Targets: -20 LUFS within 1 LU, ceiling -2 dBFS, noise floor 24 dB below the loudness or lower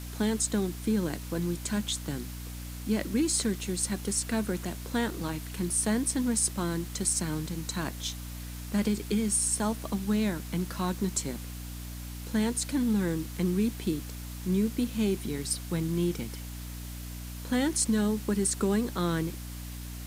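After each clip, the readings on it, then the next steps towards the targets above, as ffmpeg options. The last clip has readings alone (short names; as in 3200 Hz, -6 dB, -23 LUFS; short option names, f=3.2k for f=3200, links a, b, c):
hum 60 Hz; harmonics up to 300 Hz; hum level -37 dBFS; noise floor -40 dBFS; noise floor target -54 dBFS; loudness -29.5 LUFS; peak -13.0 dBFS; loudness target -20.0 LUFS
-> -af "bandreject=f=60:t=h:w=6,bandreject=f=120:t=h:w=6,bandreject=f=180:t=h:w=6,bandreject=f=240:t=h:w=6,bandreject=f=300:t=h:w=6"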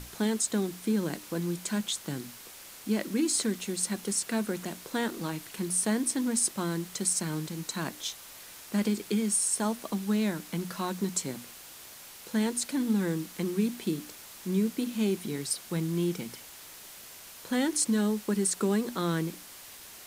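hum none; noise floor -48 dBFS; noise floor target -54 dBFS
-> -af "afftdn=nr=6:nf=-48"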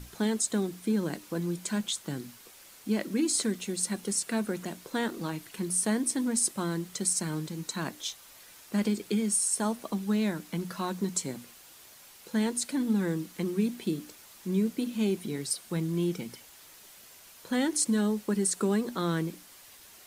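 noise floor -53 dBFS; noise floor target -54 dBFS
-> -af "afftdn=nr=6:nf=-53"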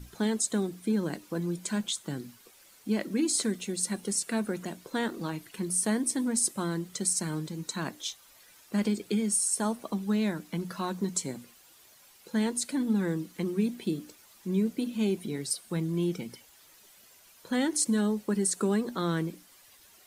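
noise floor -58 dBFS; loudness -30.5 LUFS; peak -13.5 dBFS; loudness target -20.0 LUFS
-> -af "volume=10.5dB"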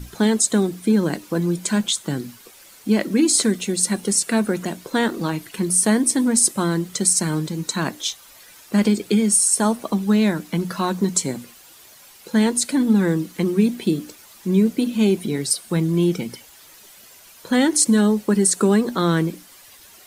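loudness -20.0 LUFS; peak -3.0 dBFS; noise floor -47 dBFS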